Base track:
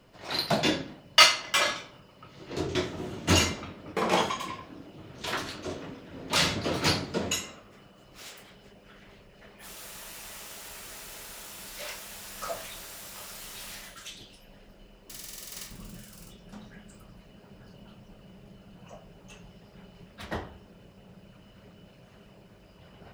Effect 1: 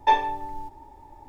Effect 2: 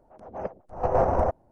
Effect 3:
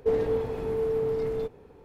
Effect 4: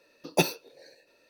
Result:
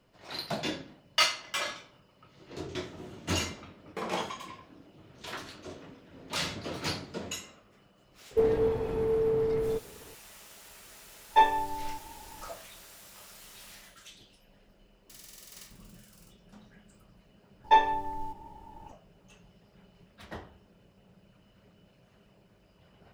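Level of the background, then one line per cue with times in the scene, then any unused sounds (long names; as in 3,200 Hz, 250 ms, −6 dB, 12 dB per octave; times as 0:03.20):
base track −8 dB
0:08.31: mix in 3
0:11.29: mix in 1 −1.5 dB, fades 0.10 s
0:17.64: mix in 1 −1.5 dB
not used: 2, 4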